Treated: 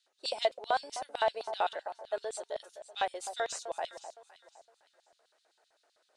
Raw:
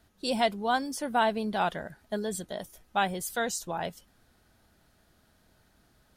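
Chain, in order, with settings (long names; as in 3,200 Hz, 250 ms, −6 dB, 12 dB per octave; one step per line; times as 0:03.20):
stylus tracing distortion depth 0.024 ms
elliptic band-pass filter 330–8,600 Hz, stop band 50 dB
notch filter 3,300 Hz, Q 16
delay that swaps between a low-pass and a high-pass 255 ms, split 1,100 Hz, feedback 52%, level −10 dB
auto-filter high-pass square 7.8 Hz 570–3,600 Hz
level −5.5 dB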